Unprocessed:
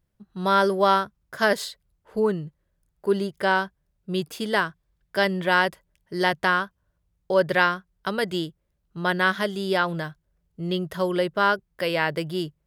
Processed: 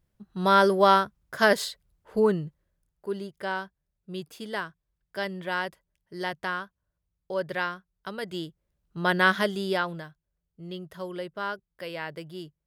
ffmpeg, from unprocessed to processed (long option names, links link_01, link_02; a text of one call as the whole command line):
ffmpeg -i in.wav -af "volume=11dB,afade=type=out:start_time=2.35:duration=0.74:silence=0.316228,afade=type=in:start_time=8.2:duration=1.14:silence=0.298538,afade=type=out:start_time=9.34:duration=0.73:silence=0.237137" out.wav